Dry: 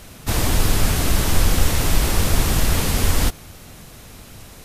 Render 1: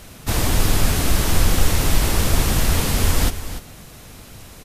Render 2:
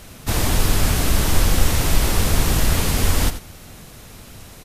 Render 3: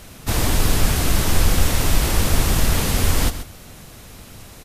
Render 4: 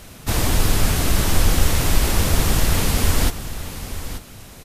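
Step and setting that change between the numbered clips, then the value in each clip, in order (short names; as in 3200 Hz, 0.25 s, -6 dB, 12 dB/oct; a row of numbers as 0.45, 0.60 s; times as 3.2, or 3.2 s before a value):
echo, time: 292, 87, 131, 884 ms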